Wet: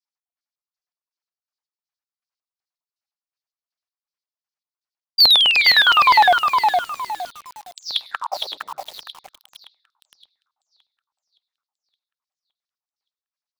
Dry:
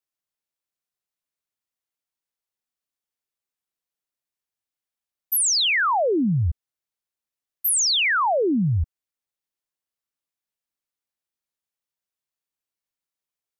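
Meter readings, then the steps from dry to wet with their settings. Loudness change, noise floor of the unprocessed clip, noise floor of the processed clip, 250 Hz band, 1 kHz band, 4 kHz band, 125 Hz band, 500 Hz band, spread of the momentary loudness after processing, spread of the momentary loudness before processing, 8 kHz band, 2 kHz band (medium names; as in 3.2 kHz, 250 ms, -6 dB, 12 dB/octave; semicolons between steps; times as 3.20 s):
+5.5 dB, under -85 dBFS, under -85 dBFS, under -20 dB, +9.5 dB, +9.5 dB, under -25 dB, -3.0 dB, 20 LU, 10 LU, -16.0 dB, +6.5 dB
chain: low-pass 10 kHz 12 dB/octave; LFO low-pass square 2.7 Hz 880–3700 Hz; simulated room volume 2600 m³, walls furnished, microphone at 0.57 m; reverb removal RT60 0.82 s; spectral gate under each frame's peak -10 dB weak; on a send: feedback echo behind a high-pass 568 ms, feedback 50%, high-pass 3.4 kHz, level -7 dB; on the sum: painted sound fall, 5.18–6.37 s, 640–4800 Hz -23 dBFS; LFO high-pass square 9.8 Hz 820–4100 Hz; waveshaping leveller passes 1; bit-crushed delay 462 ms, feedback 35%, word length 7-bit, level -4 dB; trim +4.5 dB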